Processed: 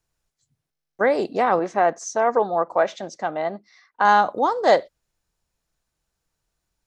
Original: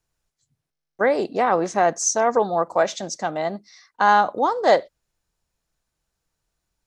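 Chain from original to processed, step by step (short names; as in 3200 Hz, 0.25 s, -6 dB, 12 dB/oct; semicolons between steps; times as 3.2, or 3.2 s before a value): 1.59–4.05 tone controls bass -6 dB, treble -14 dB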